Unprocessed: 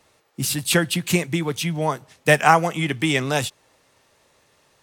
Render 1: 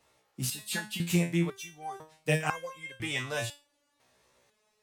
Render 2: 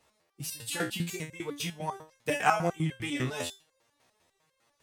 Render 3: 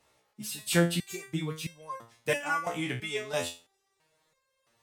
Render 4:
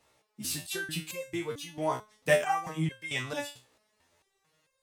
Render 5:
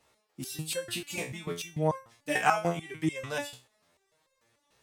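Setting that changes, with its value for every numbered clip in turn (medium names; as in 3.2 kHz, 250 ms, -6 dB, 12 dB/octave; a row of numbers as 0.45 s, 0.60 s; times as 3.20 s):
resonator arpeggio, rate: 2 Hz, 10 Hz, 3 Hz, 4.5 Hz, 6.8 Hz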